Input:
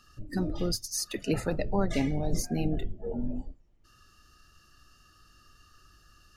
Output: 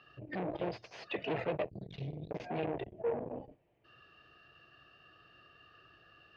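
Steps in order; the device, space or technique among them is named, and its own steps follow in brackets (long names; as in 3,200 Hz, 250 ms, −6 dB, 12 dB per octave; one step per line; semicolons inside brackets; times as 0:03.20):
0:01.70–0:02.31: Chebyshev band-stop filter 150–3,900 Hz, order 3
guitar amplifier (tube saturation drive 36 dB, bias 0.4; bass and treble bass −8 dB, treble −9 dB; loudspeaker in its box 110–3,400 Hz, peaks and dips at 130 Hz +6 dB, 240 Hz −7 dB, 470 Hz +4 dB, 670 Hz +6 dB, 1,300 Hz −7 dB, 2,500 Hz +5 dB)
level +5.5 dB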